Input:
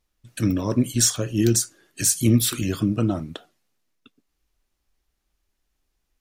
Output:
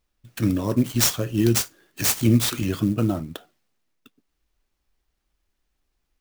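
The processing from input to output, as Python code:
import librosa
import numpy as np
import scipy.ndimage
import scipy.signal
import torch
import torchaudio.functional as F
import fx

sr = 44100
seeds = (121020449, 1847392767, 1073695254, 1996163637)

y = fx.clock_jitter(x, sr, seeds[0], jitter_ms=0.025)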